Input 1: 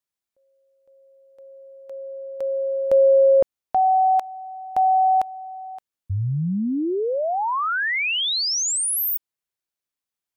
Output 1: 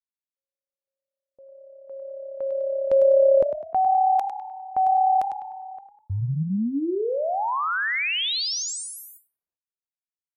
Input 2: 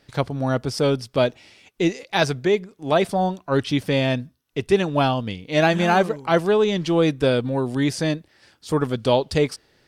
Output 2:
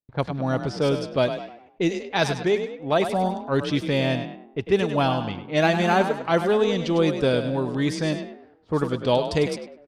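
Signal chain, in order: frequency-shifting echo 101 ms, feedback 42%, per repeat +34 Hz, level -9 dB; gate with hold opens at -46 dBFS, hold 66 ms, range -35 dB; level-controlled noise filter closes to 760 Hz, open at -16 dBFS; trim -2.5 dB

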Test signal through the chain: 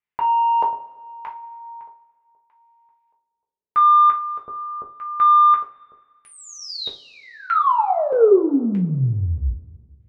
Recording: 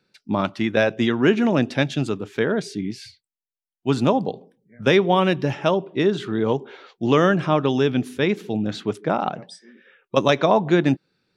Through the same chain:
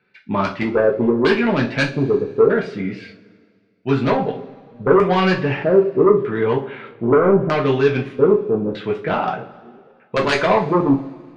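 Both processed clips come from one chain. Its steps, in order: LFO low-pass square 0.8 Hz 470–2200 Hz; sine folder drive 9 dB, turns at 0 dBFS; two-slope reverb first 0.28 s, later 1.9 s, from -22 dB, DRR -2 dB; trim -13 dB

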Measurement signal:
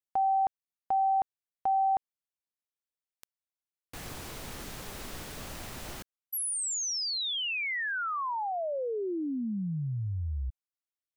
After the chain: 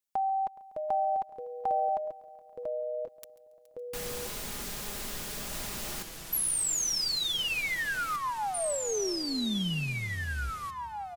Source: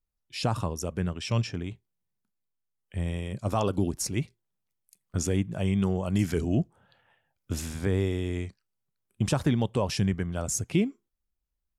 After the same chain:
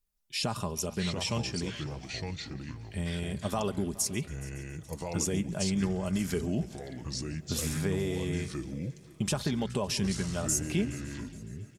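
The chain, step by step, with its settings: treble shelf 3.6 kHz +7.5 dB; comb 4.9 ms, depth 44%; compression 2:1, threshold -31 dBFS; multi-head delay 140 ms, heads first and third, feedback 55%, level -21 dB; ever faster or slower copies 570 ms, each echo -4 st, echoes 2, each echo -6 dB

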